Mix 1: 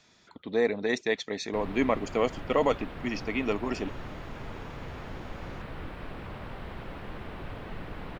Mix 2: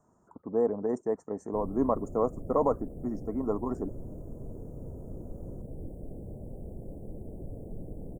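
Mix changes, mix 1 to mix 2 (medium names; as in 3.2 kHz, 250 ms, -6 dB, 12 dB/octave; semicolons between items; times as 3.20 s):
background: add inverse Chebyshev band-stop 1.2–2.5 kHz, stop band 60 dB; master: add elliptic band-stop 1.1–8.4 kHz, stop band 70 dB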